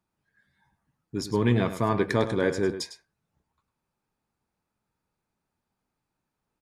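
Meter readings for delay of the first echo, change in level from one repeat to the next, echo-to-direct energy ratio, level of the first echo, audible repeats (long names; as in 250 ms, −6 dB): 103 ms, repeats not evenly spaced, −11.5 dB, −11.5 dB, 1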